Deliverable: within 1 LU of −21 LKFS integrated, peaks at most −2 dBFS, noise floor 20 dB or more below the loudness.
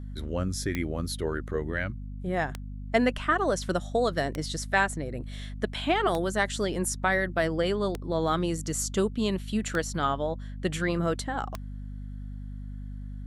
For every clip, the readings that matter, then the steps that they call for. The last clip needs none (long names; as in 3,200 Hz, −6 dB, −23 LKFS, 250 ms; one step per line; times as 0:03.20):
number of clicks 7; mains hum 50 Hz; hum harmonics up to 250 Hz; level of the hum −35 dBFS; integrated loudness −29.0 LKFS; sample peak −8.0 dBFS; target loudness −21.0 LKFS
→ click removal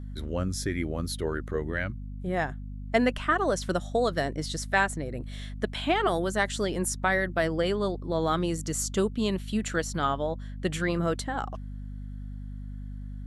number of clicks 0; mains hum 50 Hz; hum harmonics up to 250 Hz; level of the hum −35 dBFS
→ hum removal 50 Hz, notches 5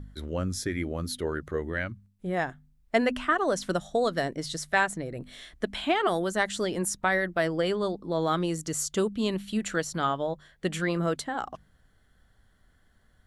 mains hum none found; integrated loudness −29.0 LKFS; sample peak −8.5 dBFS; target loudness −21.0 LKFS
→ level +8 dB
brickwall limiter −2 dBFS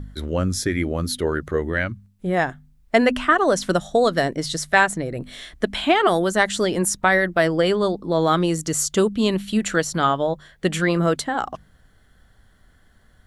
integrated loudness −21.0 LKFS; sample peak −2.0 dBFS; background noise floor −56 dBFS